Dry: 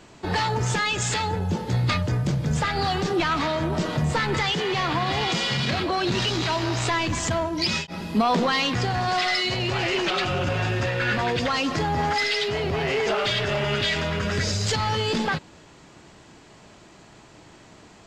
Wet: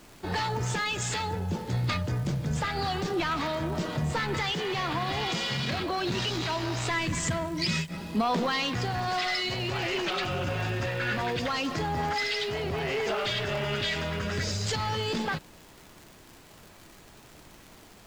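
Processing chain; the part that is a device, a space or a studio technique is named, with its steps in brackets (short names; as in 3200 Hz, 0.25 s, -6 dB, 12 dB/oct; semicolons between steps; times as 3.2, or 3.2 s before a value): vinyl LP (crackle 93/s -33 dBFS; pink noise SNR 25 dB); 6.9–7.97 thirty-one-band EQ 160 Hz +11 dB, 800 Hz -7 dB, 2000 Hz +5 dB, 8000 Hz +6 dB; gain -5.5 dB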